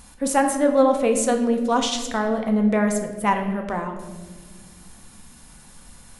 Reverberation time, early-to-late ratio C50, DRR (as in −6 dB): 1.4 s, 7.5 dB, 3.5 dB